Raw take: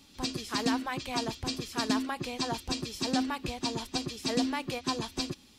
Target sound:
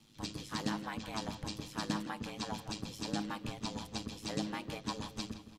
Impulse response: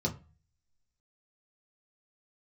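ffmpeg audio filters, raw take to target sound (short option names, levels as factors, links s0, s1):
-filter_complex "[0:a]aeval=exprs='val(0)*sin(2*PI*53*n/s)':c=same,asplit=2[s0][s1];[s1]adelay=165,lowpass=f=3100:p=1,volume=0.282,asplit=2[s2][s3];[s3]adelay=165,lowpass=f=3100:p=1,volume=0.49,asplit=2[s4][s5];[s5]adelay=165,lowpass=f=3100:p=1,volume=0.49,asplit=2[s6][s7];[s7]adelay=165,lowpass=f=3100:p=1,volume=0.49,asplit=2[s8][s9];[s9]adelay=165,lowpass=f=3100:p=1,volume=0.49[s10];[s0][s2][s4][s6][s8][s10]amix=inputs=6:normalize=0,asplit=2[s11][s12];[1:a]atrim=start_sample=2205[s13];[s12][s13]afir=irnorm=-1:irlink=0,volume=0.126[s14];[s11][s14]amix=inputs=2:normalize=0,volume=0.631"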